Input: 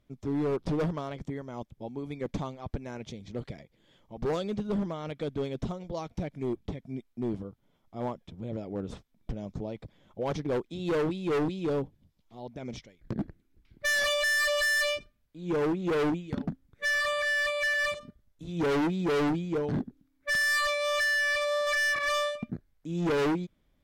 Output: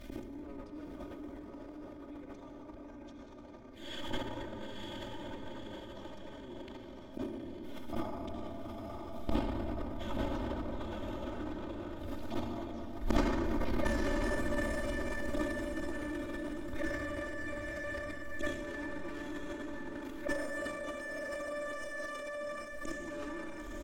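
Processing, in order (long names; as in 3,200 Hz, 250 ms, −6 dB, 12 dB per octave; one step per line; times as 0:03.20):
gate with flip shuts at −42 dBFS, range −41 dB
feedback delay with all-pass diffusion 971 ms, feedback 46%, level −3.5 dB
convolution reverb RT60 5.9 s, pre-delay 52 ms, DRR −1 dB
transient designer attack −6 dB, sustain +12 dB
comb filter 3.3 ms, depth 93%
level +17.5 dB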